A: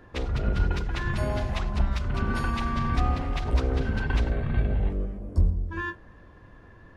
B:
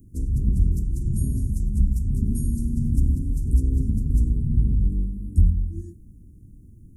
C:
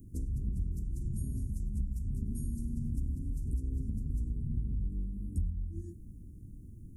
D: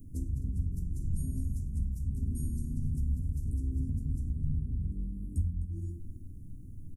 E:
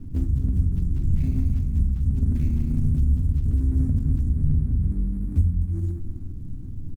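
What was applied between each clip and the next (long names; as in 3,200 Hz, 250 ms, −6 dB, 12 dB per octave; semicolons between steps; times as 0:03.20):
inverse Chebyshev band-stop filter 750–3,500 Hz, stop band 60 dB; high-shelf EQ 3,300 Hz +11 dB; level +5 dB
downward compressor 2.5 to 1, threshold −35 dBFS, peak gain reduction 16 dB; level −1.5 dB
slap from a distant wall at 44 metres, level −13 dB; convolution reverb RT60 0.30 s, pre-delay 3 ms, DRR 5 dB
running median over 41 samples; far-end echo of a speakerphone 320 ms, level −12 dB; in parallel at −7 dB: soft clipping −28.5 dBFS, distortion −14 dB; on the sum: level +8.5 dB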